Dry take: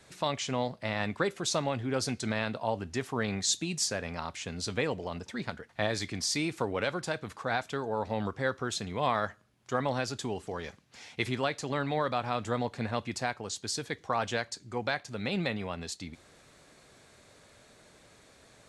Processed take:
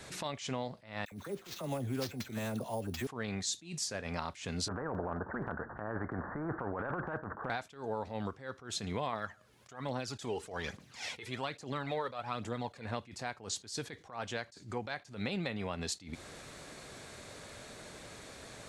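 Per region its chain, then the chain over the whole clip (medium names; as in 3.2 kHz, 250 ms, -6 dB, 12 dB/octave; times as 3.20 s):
1.05–3.07 s: peaking EQ 1.7 kHz -7.5 dB 2.6 oct + phase dispersion lows, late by 68 ms, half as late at 1.5 kHz + sample-rate reducer 10 kHz
4.68–7.50 s: steep low-pass 1.6 kHz 96 dB/octave + compressor with a negative ratio -38 dBFS + spectrum-flattening compressor 2:1
9.13–12.85 s: bass shelf 110 Hz -8 dB + phaser 1.2 Hz, delay 2.4 ms, feedback 51%
whole clip: compression 10:1, threshold -41 dBFS; attacks held to a fixed rise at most 140 dB/s; trim +8.5 dB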